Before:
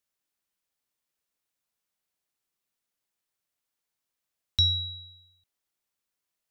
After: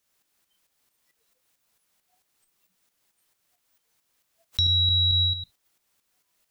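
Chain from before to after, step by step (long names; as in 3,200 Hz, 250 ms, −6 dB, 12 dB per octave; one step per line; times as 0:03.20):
noise reduction from a noise print of the clip's start 24 dB
shaped tremolo saw up 4.5 Hz, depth 60%
envelope flattener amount 100%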